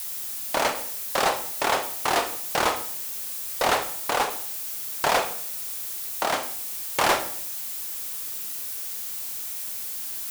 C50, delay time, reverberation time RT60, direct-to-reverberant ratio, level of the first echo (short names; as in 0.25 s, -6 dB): 11.0 dB, none, 0.60 s, 8.5 dB, none